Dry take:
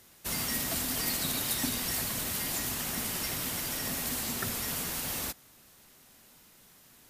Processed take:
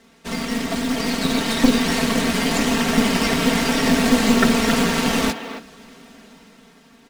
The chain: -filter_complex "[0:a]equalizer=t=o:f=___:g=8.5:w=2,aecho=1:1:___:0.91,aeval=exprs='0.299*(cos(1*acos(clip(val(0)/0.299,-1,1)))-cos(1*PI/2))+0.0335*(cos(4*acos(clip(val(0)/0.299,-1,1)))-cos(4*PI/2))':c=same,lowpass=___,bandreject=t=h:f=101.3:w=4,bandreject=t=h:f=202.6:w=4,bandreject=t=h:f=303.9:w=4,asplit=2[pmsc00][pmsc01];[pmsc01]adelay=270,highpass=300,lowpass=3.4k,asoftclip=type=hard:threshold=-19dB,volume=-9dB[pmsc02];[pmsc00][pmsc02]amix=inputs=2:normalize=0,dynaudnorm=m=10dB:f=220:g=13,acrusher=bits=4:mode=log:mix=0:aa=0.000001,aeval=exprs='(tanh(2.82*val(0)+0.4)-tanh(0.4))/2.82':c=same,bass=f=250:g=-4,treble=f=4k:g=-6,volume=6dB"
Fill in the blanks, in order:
240, 4.4, 6.6k